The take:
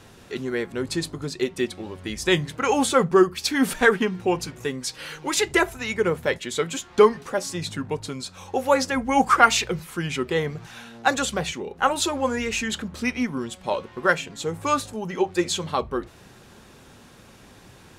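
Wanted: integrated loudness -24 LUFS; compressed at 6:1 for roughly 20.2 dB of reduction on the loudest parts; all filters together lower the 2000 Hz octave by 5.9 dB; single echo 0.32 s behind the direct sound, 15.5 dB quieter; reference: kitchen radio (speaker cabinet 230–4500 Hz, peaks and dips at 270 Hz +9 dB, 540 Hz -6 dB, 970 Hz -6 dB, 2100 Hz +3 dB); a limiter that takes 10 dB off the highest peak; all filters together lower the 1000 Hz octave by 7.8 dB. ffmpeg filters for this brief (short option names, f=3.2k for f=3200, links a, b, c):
-af "equalizer=f=1k:t=o:g=-6,equalizer=f=2k:t=o:g=-6.5,acompressor=threshold=-34dB:ratio=6,alimiter=level_in=5.5dB:limit=-24dB:level=0:latency=1,volume=-5.5dB,highpass=230,equalizer=f=270:t=q:w=4:g=9,equalizer=f=540:t=q:w=4:g=-6,equalizer=f=970:t=q:w=4:g=-6,equalizer=f=2.1k:t=q:w=4:g=3,lowpass=f=4.5k:w=0.5412,lowpass=f=4.5k:w=1.3066,aecho=1:1:320:0.168,volume=15.5dB"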